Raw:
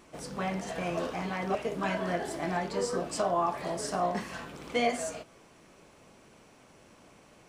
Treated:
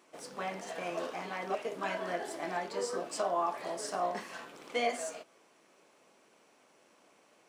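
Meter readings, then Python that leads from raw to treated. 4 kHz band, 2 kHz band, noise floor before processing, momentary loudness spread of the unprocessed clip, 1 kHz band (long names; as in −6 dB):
−3.0 dB, −3.0 dB, −58 dBFS, 7 LU, −3.0 dB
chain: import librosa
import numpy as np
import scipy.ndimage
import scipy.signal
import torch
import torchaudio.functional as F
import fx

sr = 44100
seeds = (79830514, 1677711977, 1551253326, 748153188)

p1 = scipy.signal.sosfilt(scipy.signal.butter(2, 320.0, 'highpass', fs=sr, output='sos'), x)
p2 = np.sign(p1) * np.maximum(np.abs(p1) - 10.0 ** (-51.0 / 20.0), 0.0)
p3 = p1 + (p2 * 10.0 ** (-7.0 / 20.0))
y = p3 * 10.0 ** (-6.0 / 20.0)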